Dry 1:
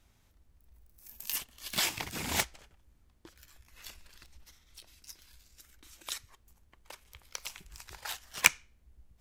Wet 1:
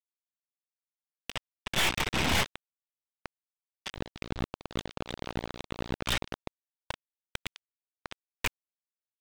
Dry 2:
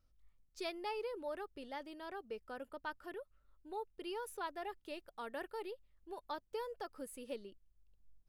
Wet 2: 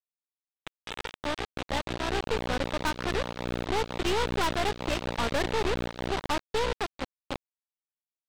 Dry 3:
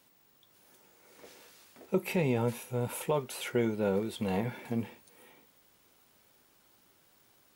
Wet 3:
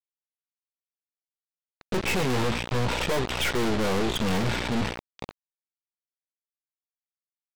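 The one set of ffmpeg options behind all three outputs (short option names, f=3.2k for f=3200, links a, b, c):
-af "afftdn=nr=21:nf=-51,aeval=exprs='val(0)+0.00398*(sin(2*PI*60*n/s)+sin(2*PI*2*60*n/s)/2+sin(2*PI*3*60*n/s)/3+sin(2*PI*4*60*n/s)/4+sin(2*PI*5*60*n/s)/5)':c=same,dynaudnorm=f=150:g=21:m=15.5dB,aresample=8000,aeval=exprs='val(0)*gte(abs(val(0)),0.0355)':c=same,aresample=44100,acontrast=62,aeval=exprs='(tanh(35.5*val(0)+0.7)-tanh(0.7))/35.5':c=same,volume=6.5dB"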